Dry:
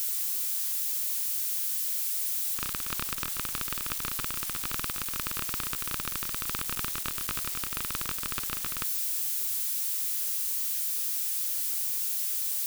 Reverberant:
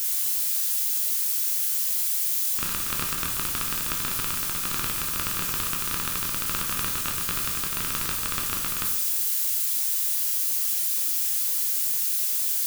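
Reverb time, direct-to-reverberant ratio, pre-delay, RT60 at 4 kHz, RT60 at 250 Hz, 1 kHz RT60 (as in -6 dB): 0.75 s, 0.5 dB, 9 ms, 0.65 s, 0.80 s, 0.70 s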